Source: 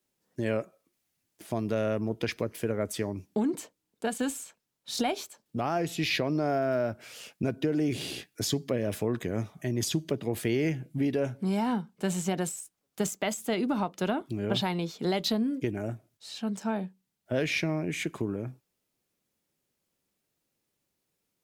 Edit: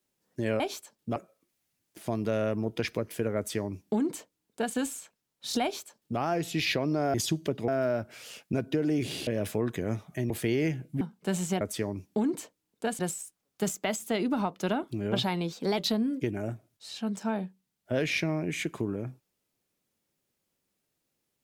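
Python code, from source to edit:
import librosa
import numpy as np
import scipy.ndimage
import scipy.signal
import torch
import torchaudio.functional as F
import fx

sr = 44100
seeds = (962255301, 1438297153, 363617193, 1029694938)

y = fx.edit(x, sr, fx.duplicate(start_s=2.81, length_s=1.38, to_s=12.37),
    fx.duplicate(start_s=5.07, length_s=0.56, to_s=0.6),
    fx.cut(start_s=8.17, length_s=0.57),
    fx.move(start_s=9.77, length_s=0.54, to_s=6.58),
    fx.cut(start_s=11.02, length_s=0.75),
    fx.speed_span(start_s=14.9, length_s=0.28, speed=1.09), tone=tone)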